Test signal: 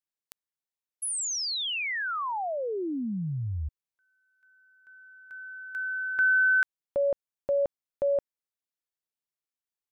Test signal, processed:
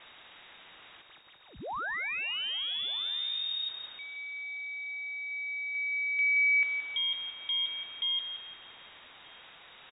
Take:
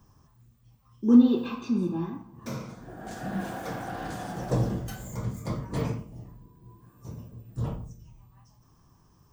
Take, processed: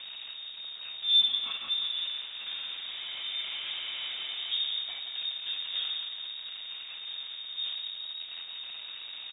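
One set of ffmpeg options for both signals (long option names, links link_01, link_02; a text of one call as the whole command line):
ffmpeg -i in.wav -filter_complex "[0:a]aeval=exprs='val(0)+0.5*0.0376*sgn(val(0))':channel_layout=same,aeval=exprs='val(0)+0.00224*(sin(2*PI*50*n/s)+sin(2*PI*2*50*n/s)/2+sin(2*PI*3*50*n/s)/3+sin(2*PI*4*50*n/s)/4+sin(2*PI*5*50*n/s)/5)':channel_layout=same,asplit=2[link_01][link_02];[link_02]aecho=0:1:173|346|519|692|865:0.398|0.167|0.0702|0.0295|0.0124[link_03];[link_01][link_03]amix=inputs=2:normalize=0,lowpass=frequency=3200:width_type=q:width=0.5098,lowpass=frequency=3200:width_type=q:width=0.6013,lowpass=frequency=3200:width_type=q:width=0.9,lowpass=frequency=3200:width_type=q:width=2.563,afreqshift=-3800,asplit=2[link_04][link_05];[link_05]adelay=1224,volume=-17dB,highshelf=frequency=4000:gain=-27.6[link_06];[link_04][link_06]amix=inputs=2:normalize=0,volume=-8dB" out.wav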